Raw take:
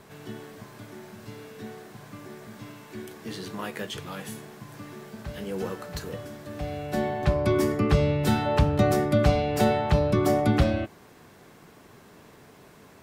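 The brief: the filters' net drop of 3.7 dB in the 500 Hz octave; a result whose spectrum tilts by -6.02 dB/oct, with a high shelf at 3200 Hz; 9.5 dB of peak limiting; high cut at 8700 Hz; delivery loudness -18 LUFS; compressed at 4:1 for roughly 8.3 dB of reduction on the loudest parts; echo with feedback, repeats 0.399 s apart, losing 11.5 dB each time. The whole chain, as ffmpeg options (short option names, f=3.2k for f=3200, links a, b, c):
-af "lowpass=8.7k,equalizer=f=500:t=o:g=-4.5,highshelf=f=3.2k:g=-6.5,acompressor=threshold=-26dB:ratio=4,alimiter=limit=-24dB:level=0:latency=1,aecho=1:1:399|798|1197:0.266|0.0718|0.0194,volume=18dB"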